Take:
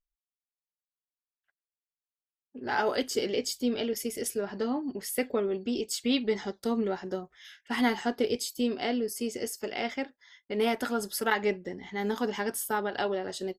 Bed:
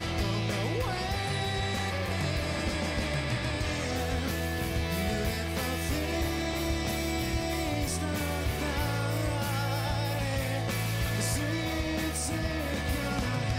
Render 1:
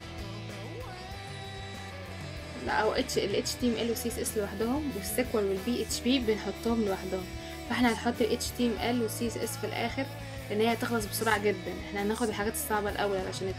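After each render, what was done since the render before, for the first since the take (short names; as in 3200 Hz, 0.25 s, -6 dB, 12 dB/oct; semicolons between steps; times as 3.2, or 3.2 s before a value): add bed -10 dB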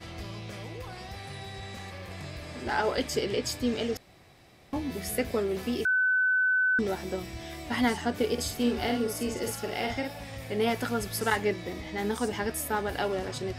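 3.97–4.73 room tone; 5.85–6.79 bleep 1510 Hz -21.5 dBFS; 8.33–10.31 doubler 50 ms -5 dB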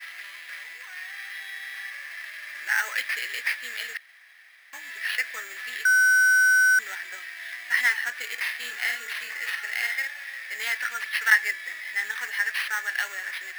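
sample-rate reducer 7200 Hz, jitter 0%; resonant high-pass 1800 Hz, resonance Q 6.8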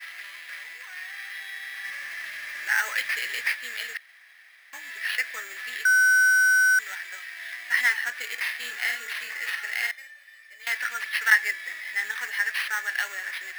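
1.84–3.52 G.711 law mismatch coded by mu; 6.3–7.32 HPF 630 Hz 6 dB/oct; 9.91–10.67 resonator 600 Hz, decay 0.18 s, mix 90%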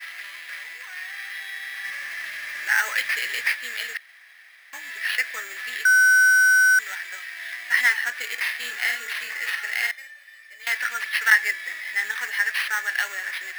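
gain +3 dB; limiter -3 dBFS, peak gain reduction 2 dB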